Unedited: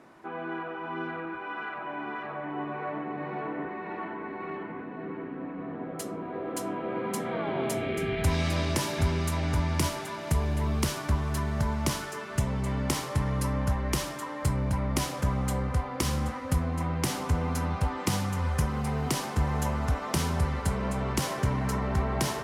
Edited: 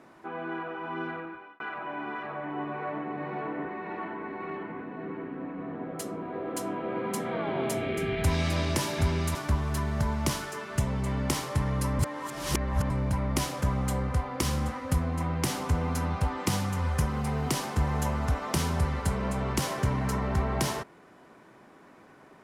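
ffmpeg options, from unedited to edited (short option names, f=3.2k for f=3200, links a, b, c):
-filter_complex "[0:a]asplit=5[a][b][c][d][e];[a]atrim=end=1.6,asetpts=PTS-STARTPTS,afade=t=out:st=1.11:d=0.49[f];[b]atrim=start=1.6:end=9.352,asetpts=PTS-STARTPTS,afade=t=in:d=0.004:c=hsin[g];[c]atrim=start=10.948:end=13.592[h];[d]atrim=start=13.588:end=14.502,asetpts=PTS-STARTPTS,areverse[i];[e]atrim=start=14.498[j];[f][g]concat=n=2:v=0:a=1[k];[k][h]acrossfade=d=0.004:c1=hsin:c2=hsin[l];[l][i]acrossfade=d=0.004:c1=hsin:c2=hsin[m];[m][j]acrossfade=d=0.004:c1=hsin:c2=hsin"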